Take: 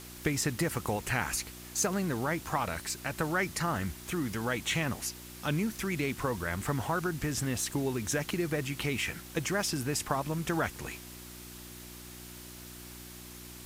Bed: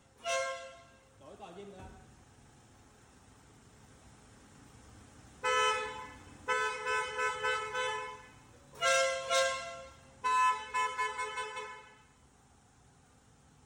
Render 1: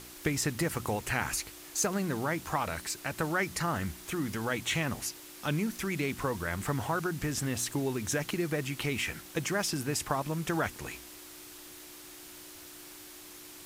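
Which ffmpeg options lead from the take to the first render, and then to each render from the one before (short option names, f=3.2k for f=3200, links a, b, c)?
-af "bandreject=f=60:t=h:w=4,bandreject=f=120:t=h:w=4,bandreject=f=180:t=h:w=4,bandreject=f=240:t=h:w=4"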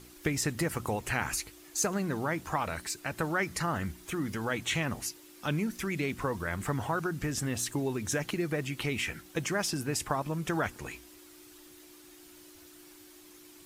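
-af "afftdn=nr=8:nf=-49"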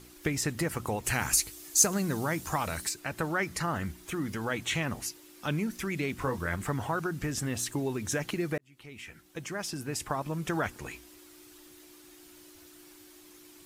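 -filter_complex "[0:a]asplit=3[a][b][c];[a]afade=t=out:st=1.04:d=0.02[d];[b]bass=f=250:g=3,treble=f=4k:g=10,afade=t=in:st=1.04:d=0.02,afade=t=out:st=2.88:d=0.02[e];[c]afade=t=in:st=2.88:d=0.02[f];[d][e][f]amix=inputs=3:normalize=0,asettb=1/sr,asplit=3[g][h][i];[g]atrim=end=6.164[j];[h]atrim=start=6.16:end=6.56,asetpts=PTS-STARTPTS,afade=t=in:d=0.004:c=qsin,afade=t=out:st=0.396:d=0.004:c=qsin,asplit=2[k][l];[l]adelay=23,volume=-6.5dB[m];[k][m]amix=inputs=2:normalize=0,atrim=end_sample=17640[n];[i]atrim=start=6.556[o];[j][n]acrossfade=d=0.004:c1=hsin:c2=qsin[p];[p][o]acrossfade=d=0.004:c1=qsin:c2=hsin,asplit=2[q][r];[q]atrim=end=8.58,asetpts=PTS-STARTPTS,afade=t=out:st=8.576:d=0.004:c=hsin[s];[r]atrim=start=8.58,asetpts=PTS-STARTPTS,afade=t=in:d=1.83[t];[s][t]concat=n=2:v=0:a=1"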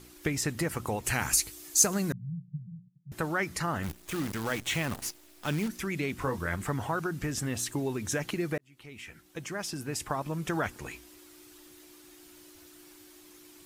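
-filter_complex "[0:a]asettb=1/sr,asplit=3[a][b][c];[a]atrim=end=2.124[d];[b]atrim=start=2.12:end=3.12,asetpts=PTS-STARTPTS,afade=t=in:d=0.004:c=qsin,afade=t=out:st=0.996:d=0.004:c=qsin,asuperpass=centerf=150:order=8:qfactor=2.2[e];[c]atrim=start=3.116[f];[d][e]acrossfade=d=0.004:c1=hsin:c2=qsin[g];[g][f]acrossfade=d=0.004:c1=qsin:c2=hsin,asettb=1/sr,asplit=3[h][i][j];[h]atrim=end=3.834[k];[i]atrim=start=3.83:end=5.68,asetpts=PTS-STARTPTS,afade=t=in:d=0.004:c=qsin,afade=t=out:st=1.846:d=0.004:c=qsin,acrusher=bits=7:dc=4:mix=0:aa=0.000001[l];[j]atrim=start=5.676[m];[k][l]acrossfade=d=0.004:c1=hsin:c2=qsin[n];[n][m]acrossfade=d=0.004:c1=qsin:c2=hsin"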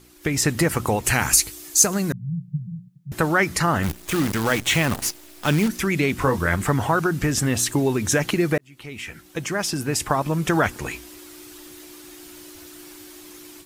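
-af "dynaudnorm=f=200:g=3:m=11dB"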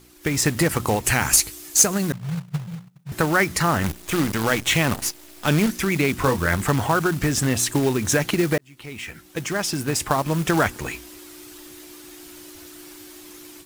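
-af "acrusher=bits=3:mode=log:mix=0:aa=0.000001"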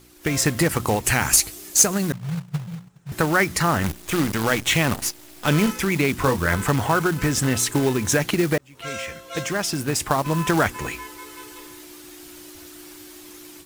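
-filter_complex "[1:a]volume=-4.5dB[a];[0:a][a]amix=inputs=2:normalize=0"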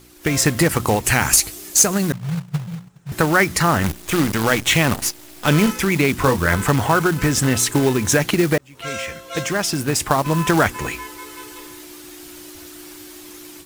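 -af "volume=3.5dB,alimiter=limit=-1dB:level=0:latency=1"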